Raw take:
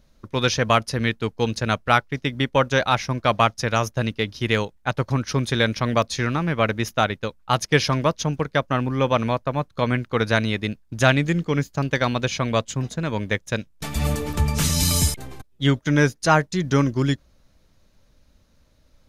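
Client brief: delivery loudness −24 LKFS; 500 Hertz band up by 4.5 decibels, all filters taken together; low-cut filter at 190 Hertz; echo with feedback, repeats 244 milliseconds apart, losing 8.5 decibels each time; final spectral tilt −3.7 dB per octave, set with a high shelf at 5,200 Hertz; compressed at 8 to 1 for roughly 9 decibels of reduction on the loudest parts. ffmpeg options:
ffmpeg -i in.wav -af "highpass=190,equalizer=frequency=500:width_type=o:gain=5.5,highshelf=frequency=5200:gain=4.5,acompressor=threshold=-19dB:ratio=8,aecho=1:1:244|488|732|976:0.376|0.143|0.0543|0.0206,volume=1dB" out.wav

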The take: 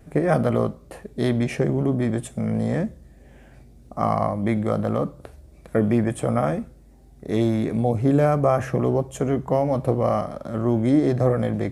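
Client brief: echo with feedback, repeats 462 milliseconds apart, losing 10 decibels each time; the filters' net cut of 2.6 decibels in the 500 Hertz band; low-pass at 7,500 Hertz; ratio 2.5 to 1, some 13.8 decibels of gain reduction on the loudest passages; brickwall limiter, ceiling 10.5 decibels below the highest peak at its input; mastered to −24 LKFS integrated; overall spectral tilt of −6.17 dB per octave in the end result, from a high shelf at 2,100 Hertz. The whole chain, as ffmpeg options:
ffmpeg -i in.wav -af "lowpass=7500,equalizer=frequency=500:width_type=o:gain=-4,highshelf=frequency=2100:gain=8.5,acompressor=threshold=-37dB:ratio=2.5,alimiter=level_in=4.5dB:limit=-24dB:level=0:latency=1,volume=-4.5dB,aecho=1:1:462|924|1386|1848:0.316|0.101|0.0324|0.0104,volume=15dB" out.wav

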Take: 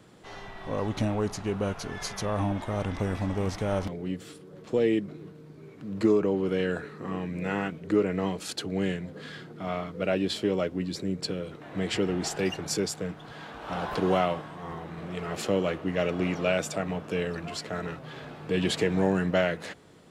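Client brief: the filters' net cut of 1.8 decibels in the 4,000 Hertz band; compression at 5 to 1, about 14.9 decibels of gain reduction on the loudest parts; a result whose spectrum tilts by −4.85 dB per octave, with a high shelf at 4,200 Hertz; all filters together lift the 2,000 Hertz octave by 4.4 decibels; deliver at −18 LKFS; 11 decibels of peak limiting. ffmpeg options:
ffmpeg -i in.wav -af "equalizer=frequency=2000:width_type=o:gain=6.5,equalizer=frequency=4000:width_type=o:gain=-8,highshelf=frequency=4200:gain=5,acompressor=threshold=-35dB:ratio=5,volume=24.5dB,alimiter=limit=-8.5dB:level=0:latency=1" out.wav

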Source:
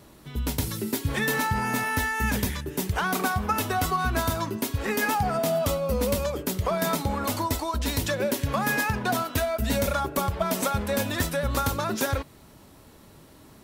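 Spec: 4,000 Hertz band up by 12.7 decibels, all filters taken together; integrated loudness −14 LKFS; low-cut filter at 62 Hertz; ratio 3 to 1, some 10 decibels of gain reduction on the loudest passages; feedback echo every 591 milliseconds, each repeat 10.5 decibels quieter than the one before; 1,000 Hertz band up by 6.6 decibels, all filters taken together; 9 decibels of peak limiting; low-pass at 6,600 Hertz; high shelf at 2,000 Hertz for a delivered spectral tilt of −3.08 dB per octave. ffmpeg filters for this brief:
ffmpeg -i in.wav -af "highpass=62,lowpass=6600,equalizer=frequency=1000:width_type=o:gain=6,highshelf=frequency=2000:gain=8,equalizer=frequency=4000:width_type=o:gain=8,acompressor=threshold=-30dB:ratio=3,alimiter=limit=-22.5dB:level=0:latency=1,aecho=1:1:591|1182|1773:0.299|0.0896|0.0269,volume=17.5dB" out.wav

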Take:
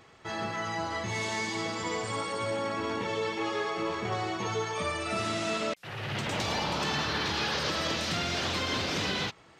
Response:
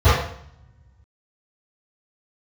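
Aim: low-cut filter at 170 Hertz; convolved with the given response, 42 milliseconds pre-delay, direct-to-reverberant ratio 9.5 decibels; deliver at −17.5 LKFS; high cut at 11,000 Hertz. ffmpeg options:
-filter_complex "[0:a]highpass=170,lowpass=11000,asplit=2[link_01][link_02];[1:a]atrim=start_sample=2205,adelay=42[link_03];[link_02][link_03]afir=irnorm=-1:irlink=0,volume=-34dB[link_04];[link_01][link_04]amix=inputs=2:normalize=0,volume=13.5dB"

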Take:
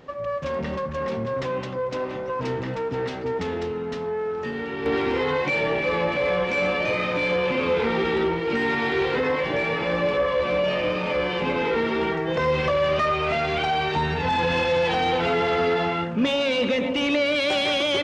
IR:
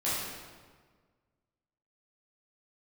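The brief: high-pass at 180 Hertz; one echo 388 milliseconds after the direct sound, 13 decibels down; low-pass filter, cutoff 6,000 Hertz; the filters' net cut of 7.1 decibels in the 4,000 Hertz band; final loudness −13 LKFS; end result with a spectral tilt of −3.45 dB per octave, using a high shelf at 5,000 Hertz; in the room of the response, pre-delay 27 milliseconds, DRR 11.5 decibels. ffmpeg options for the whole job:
-filter_complex "[0:a]highpass=180,lowpass=6000,equalizer=frequency=4000:width_type=o:gain=-6.5,highshelf=frequency=5000:gain=-8,aecho=1:1:388:0.224,asplit=2[link_01][link_02];[1:a]atrim=start_sample=2205,adelay=27[link_03];[link_02][link_03]afir=irnorm=-1:irlink=0,volume=-20dB[link_04];[link_01][link_04]amix=inputs=2:normalize=0,volume=11.5dB"

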